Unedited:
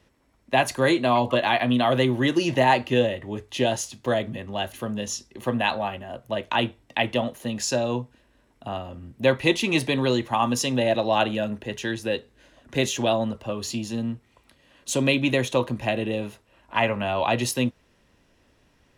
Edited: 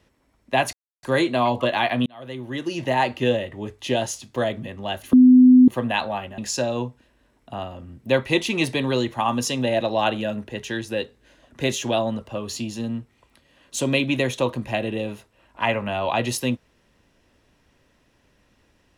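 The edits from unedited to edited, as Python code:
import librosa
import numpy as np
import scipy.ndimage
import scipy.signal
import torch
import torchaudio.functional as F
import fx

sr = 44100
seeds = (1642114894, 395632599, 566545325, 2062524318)

y = fx.edit(x, sr, fx.insert_silence(at_s=0.73, length_s=0.3),
    fx.fade_in_span(start_s=1.76, length_s=1.19),
    fx.bleep(start_s=4.83, length_s=0.55, hz=253.0, db=-7.5),
    fx.cut(start_s=6.08, length_s=1.44), tone=tone)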